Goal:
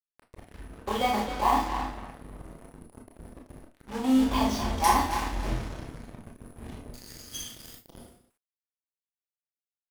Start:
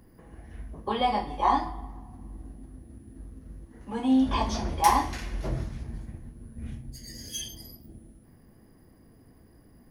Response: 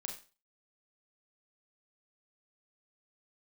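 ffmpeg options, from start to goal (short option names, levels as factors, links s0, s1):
-filter_complex "[0:a]asplit=2[s0][s1];[s1]acompressor=threshold=0.0112:ratio=6,volume=0.794[s2];[s0][s2]amix=inputs=2:normalize=0,acrusher=bits=5:mix=0:aa=0.5,asplit=2[s3][s4];[s4]adelay=268,lowpass=f=4500:p=1,volume=0.422,asplit=2[s5][s6];[s6]adelay=268,lowpass=f=4500:p=1,volume=0.22,asplit=2[s7][s8];[s8]adelay=268,lowpass=f=4500:p=1,volume=0.22[s9];[s3][s5][s7][s9]amix=inputs=4:normalize=0,aeval=exprs='sgn(val(0))*max(abs(val(0))-0.02,0)':c=same[s10];[1:a]atrim=start_sample=2205,asetrate=52920,aresample=44100[s11];[s10][s11]afir=irnorm=-1:irlink=0,areverse,acompressor=mode=upward:threshold=0.00708:ratio=2.5,areverse,volume=1.58"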